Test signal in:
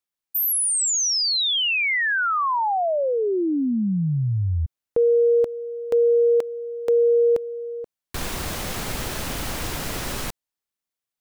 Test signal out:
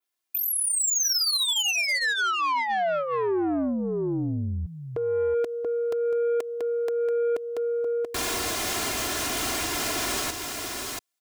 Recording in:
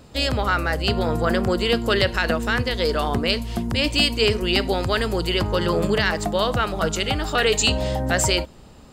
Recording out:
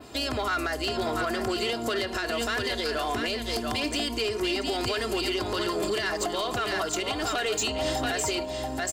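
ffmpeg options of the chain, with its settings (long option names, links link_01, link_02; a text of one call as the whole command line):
ffmpeg -i in.wav -filter_complex "[0:a]asplit=2[link_01][link_02];[link_02]aecho=0:1:683:0.376[link_03];[link_01][link_03]amix=inputs=2:normalize=0,acrossover=split=1700|3400[link_04][link_05][link_06];[link_04]acompressor=threshold=-20dB:ratio=4[link_07];[link_05]acompressor=threshold=-32dB:ratio=4[link_08];[link_06]acompressor=threshold=-33dB:ratio=4[link_09];[link_07][link_08][link_09]amix=inputs=3:normalize=0,highpass=frequency=250:poles=1,aecho=1:1:2.9:0.62,alimiter=limit=-21dB:level=0:latency=1:release=274,adynamicequalizer=threshold=0.00562:dfrequency=6800:dqfactor=0.83:tfrequency=6800:tqfactor=0.83:attack=5:release=100:ratio=0.375:range=2.5:mode=boostabove:tftype=bell,asoftclip=type=tanh:threshold=-24.5dB,volume=4dB" out.wav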